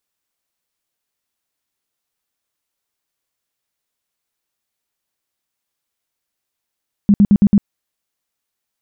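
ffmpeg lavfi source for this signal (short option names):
-f lavfi -i "aevalsrc='0.501*sin(2*PI*203*mod(t,0.11))*lt(mod(t,0.11),10/203)':d=0.55:s=44100"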